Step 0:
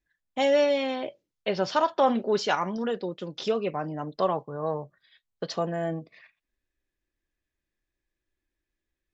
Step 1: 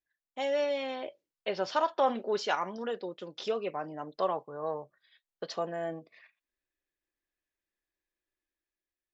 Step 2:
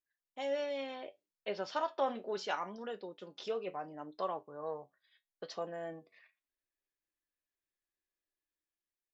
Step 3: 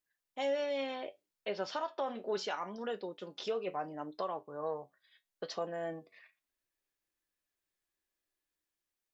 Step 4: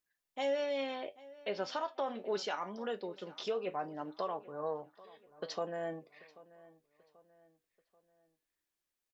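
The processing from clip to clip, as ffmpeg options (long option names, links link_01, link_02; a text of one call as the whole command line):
ffmpeg -i in.wav -af "bass=frequency=250:gain=-11,treble=frequency=4000:gain=-2,dynaudnorm=framelen=120:gausssize=13:maxgain=4.5dB,volume=-8.5dB" out.wav
ffmpeg -i in.wav -af "flanger=delay=9.7:depth=1.3:regen=67:speed=0.7:shape=sinusoidal,volume=-2dB" out.wav
ffmpeg -i in.wav -af "alimiter=level_in=5.5dB:limit=-24dB:level=0:latency=1:release=304,volume=-5.5dB,volume=4dB" out.wav
ffmpeg -i in.wav -filter_complex "[0:a]asplit=2[link_01][link_02];[link_02]adelay=786,lowpass=frequency=3400:poles=1,volume=-20dB,asplit=2[link_03][link_04];[link_04]adelay=786,lowpass=frequency=3400:poles=1,volume=0.44,asplit=2[link_05][link_06];[link_06]adelay=786,lowpass=frequency=3400:poles=1,volume=0.44[link_07];[link_01][link_03][link_05][link_07]amix=inputs=4:normalize=0" out.wav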